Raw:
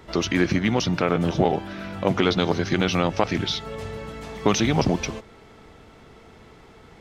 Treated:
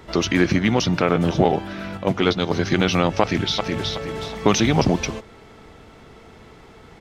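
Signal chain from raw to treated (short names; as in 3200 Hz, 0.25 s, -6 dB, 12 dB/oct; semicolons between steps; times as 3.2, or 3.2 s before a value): 1.97–2.53 gate -19 dBFS, range -6 dB; 3.21–3.91 echo throw 0.37 s, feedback 35%, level -4 dB; gain +3 dB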